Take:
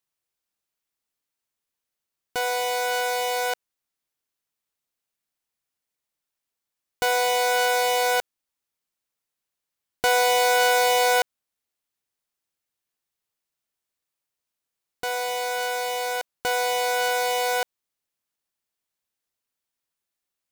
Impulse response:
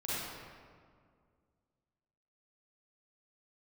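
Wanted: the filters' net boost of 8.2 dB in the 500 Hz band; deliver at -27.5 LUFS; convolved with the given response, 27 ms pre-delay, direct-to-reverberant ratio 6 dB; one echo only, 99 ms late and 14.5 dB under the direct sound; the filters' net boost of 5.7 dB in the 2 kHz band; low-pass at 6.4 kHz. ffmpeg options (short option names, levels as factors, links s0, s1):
-filter_complex "[0:a]lowpass=6400,equalizer=f=500:t=o:g=8,equalizer=f=2000:t=o:g=7.5,aecho=1:1:99:0.188,asplit=2[s0][s1];[1:a]atrim=start_sample=2205,adelay=27[s2];[s1][s2]afir=irnorm=-1:irlink=0,volume=0.282[s3];[s0][s3]amix=inputs=2:normalize=0,volume=0.251"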